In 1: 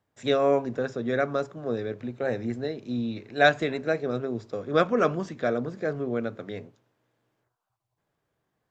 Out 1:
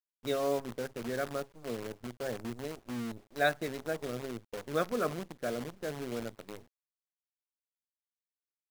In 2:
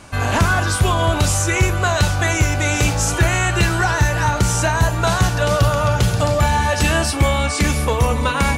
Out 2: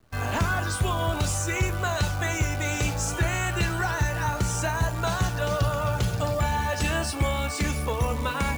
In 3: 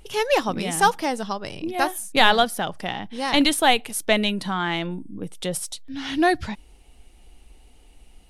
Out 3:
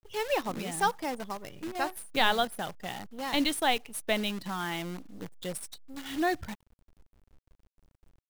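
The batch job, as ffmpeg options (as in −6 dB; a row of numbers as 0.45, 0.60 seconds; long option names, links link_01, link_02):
-af "afftdn=noise_reduction=29:noise_floor=-35,acrusher=bits=6:dc=4:mix=0:aa=0.000001,volume=-9dB"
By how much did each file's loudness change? −9.0, −9.0, −9.0 LU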